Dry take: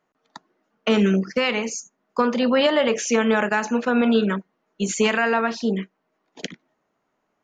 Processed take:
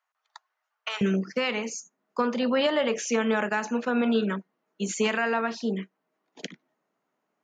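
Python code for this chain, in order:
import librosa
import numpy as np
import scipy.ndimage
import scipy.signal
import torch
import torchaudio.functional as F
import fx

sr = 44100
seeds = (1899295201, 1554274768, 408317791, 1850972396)

y = fx.highpass(x, sr, hz=fx.steps((0.0, 840.0), (1.01, 130.0)), slope=24)
y = F.gain(torch.from_numpy(y), -5.5).numpy()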